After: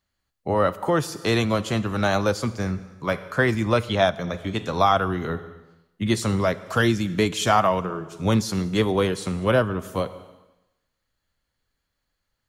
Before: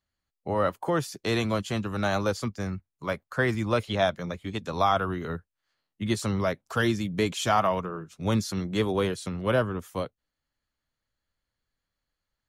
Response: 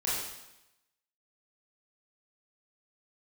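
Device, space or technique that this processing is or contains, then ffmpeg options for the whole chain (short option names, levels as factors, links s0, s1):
compressed reverb return: -filter_complex "[0:a]asplit=2[s0][s1];[1:a]atrim=start_sample=2205[s2];[s1][s2]afir=irnorm=-1:irlink=0,acompressor=threshold=0.0562:ratio=10,volume=0.237[s3];[s0][s3]amix=inputs=2:normalize=0,volume=1.58"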